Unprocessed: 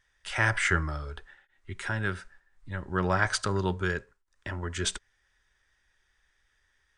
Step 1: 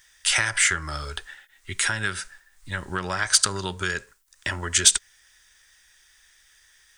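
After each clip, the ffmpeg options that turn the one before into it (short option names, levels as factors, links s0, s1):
-af "aeval=exprs='0.376*(cos(1*acos(clip(val(0)/0.376,-1,1)))-cos(1*PI/2))+0.0473*(cos(2*acos(clip(val(0)/0.376,-1,1)))-cos(2*PI/2))':c=same,acompressor=threshold=0.0316:ratio=10,crystalizer=i=9.5:c=0,volume=1.33"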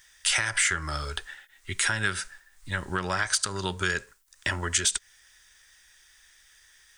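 -af "alimiter=limit=0.266:level=0:latency=1:release=220"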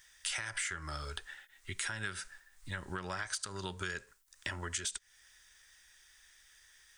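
-af "acompressor=threshold=0.0158:ratio=2,volume=0.596"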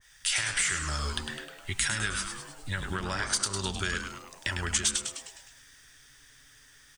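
-filter_complex "[0:a]lowshelf=f=200:g=5.5,asplit=8[s0][s1][s2][s3][s4][s5][s6][s7];[s1]adelay=103,afreqshift=-150,volume=0.473[s8];[s2]adelay=206,afreqshift=-300,volume=0.269[s9];[s3]adelay=309,afreqshift=-450,volume=0.153[s10];[s4]adelay=412,afreqshift=-600,volume=0.0881[s11];[s5]adelay=515,afreqshift=-750,volume=0.0501[s12];[s6]adelay=618,afreqshift=-900,volume=0.0285[s13];[s7]adelay=721,afreqshift=-1050,volume=0.0162[s14];[s0][s8][s9][s10][s11][s12][s13][s14]amix=inputs=8:normalize=0,adynamicequalizer=threshold=0.00251:dfrequency=1800:dqfactor=0.7:tfrequency=1800:tqfactor=0.7:attack=5:release=100:ratio=0.375:range=3:mode=boostabove:tftype=highshelf,volume=1.58"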